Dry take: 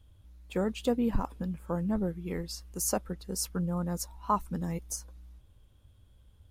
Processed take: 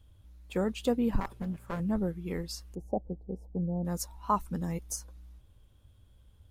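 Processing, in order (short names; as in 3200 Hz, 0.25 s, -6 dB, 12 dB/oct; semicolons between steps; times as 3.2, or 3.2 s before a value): 1.2–1.8 minimum comb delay 5.1 ms; 2.75–3.85 elliptic low-pass 790 Hz, stop band 40 dB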